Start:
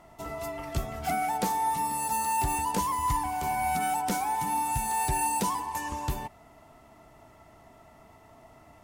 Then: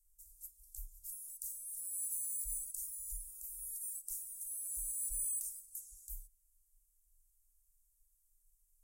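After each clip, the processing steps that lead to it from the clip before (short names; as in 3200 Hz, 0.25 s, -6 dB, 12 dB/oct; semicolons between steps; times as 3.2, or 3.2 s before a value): inverse Chebyshev band-stop 130–2200 Hz, stop band 70 dB; gain -2 dB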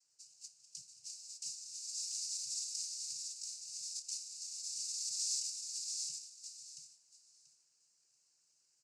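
noise vocoder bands 8; on a send: feedback echo 0.685 s, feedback 19%, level -4 dB; on the sum: gain +10.5 dB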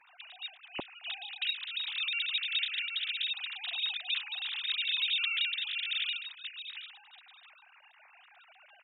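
sine-wave speech; gain +8 dB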